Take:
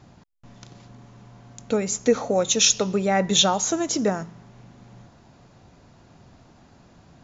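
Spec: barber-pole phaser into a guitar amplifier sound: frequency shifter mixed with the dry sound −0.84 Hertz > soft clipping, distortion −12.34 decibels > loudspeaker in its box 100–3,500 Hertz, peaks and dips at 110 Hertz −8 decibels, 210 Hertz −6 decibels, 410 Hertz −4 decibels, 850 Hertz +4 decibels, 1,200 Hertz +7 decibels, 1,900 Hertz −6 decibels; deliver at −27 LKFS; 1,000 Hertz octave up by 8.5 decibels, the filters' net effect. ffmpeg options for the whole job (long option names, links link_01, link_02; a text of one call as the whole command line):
ffmpeg -i in.wav -filter_complex "[0:a]equalizer=frequency=1000:width_type=o:gain=7,asplit=2[link_01][link_02];[link_02]afreqshift=-0.84[link_03];[link_01][link_03]amix=inputs=2:normalize=1,asoftclip=threshold=-18dB,highpass=100,equalizer=frequency=110:width_type=q:width=4:gain=-8,equalizer=frequency=210:width_type=q:width=4:gain=-6,equalizer=frequency=410:width_type=q:width=4:gain=-4,equalizer=frequency=850:width_type=q:width=4:gain=4,equalizer=frequency=1200:width_type=q:width=4:gain=7,equalizer=frequency=1900:width_type=q:width=4:gain=-6,lowpass=frequency=3500:width=0.5412,lowpass=frequency=3500:width=1.3066,volume=0.5dB" out.wav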